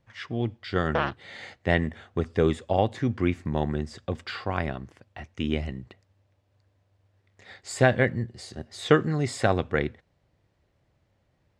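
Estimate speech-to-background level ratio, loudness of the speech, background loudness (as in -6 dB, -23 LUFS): 3.5 dB, -27.5 LUFS, -31.0 LUFS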